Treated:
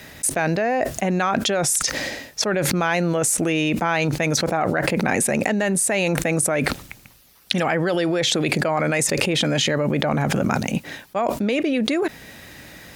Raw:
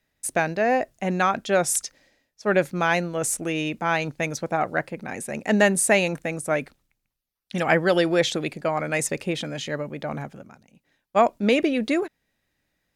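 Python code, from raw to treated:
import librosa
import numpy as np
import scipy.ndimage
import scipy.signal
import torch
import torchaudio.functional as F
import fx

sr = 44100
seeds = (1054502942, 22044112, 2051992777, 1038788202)

y = scipy.signal.sosfilt(scipy.signal.butter(2, 58.0, 'highpass', fs=sr, output='sos'), x)
y = fx.env_flatten(y, sr, amount_pct=100)
y = y * librosa.db_to_amplitude(-6.5)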